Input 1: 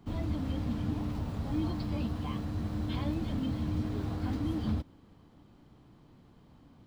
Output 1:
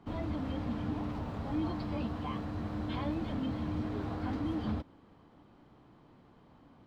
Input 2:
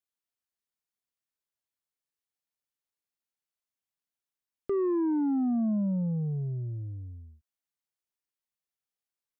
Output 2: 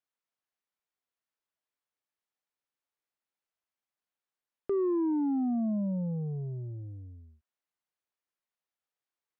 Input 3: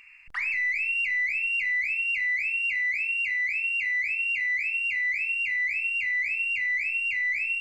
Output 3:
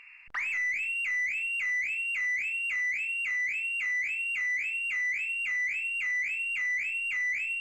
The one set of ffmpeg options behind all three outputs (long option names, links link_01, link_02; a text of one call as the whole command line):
ffmpeg -i in.wav -filter_complex "[0:a]asplit=2[link_01][link_02];[link_02]highpass=frequency=720:poles=1,volume=11dB,asoftclip=type=tanh:threshold=-20.5dB[link_03];[link_01][link_03]amix=inputs=2:normalize=0,lowpass=frequency=1300:poles=1,volume=-6dB" out.wav